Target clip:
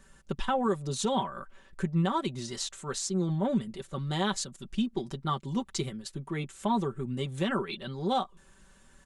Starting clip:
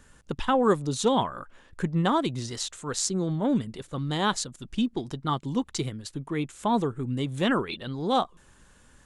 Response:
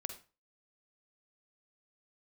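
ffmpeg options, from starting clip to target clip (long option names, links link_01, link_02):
-af "aecho=1:1:5.2:0.73,alimiter=limit=-14.5dB:level=0:latency=1:release=185,volume=-4dB"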